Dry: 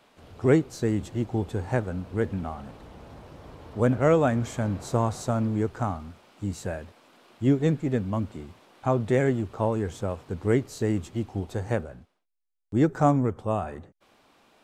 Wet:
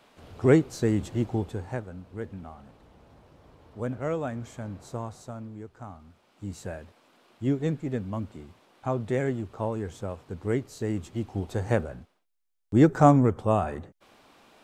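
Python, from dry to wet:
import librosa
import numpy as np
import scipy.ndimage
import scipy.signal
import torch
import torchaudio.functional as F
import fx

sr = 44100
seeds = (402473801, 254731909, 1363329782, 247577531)

y = fx.gain(x, sr, db=fx.line((1.26, 1.0), (1.89, -9.5), (4.88, -9.5), (5.69, -16.0), (6.57, -4.5), (10.81, -4.5), (11.91, 3.5)))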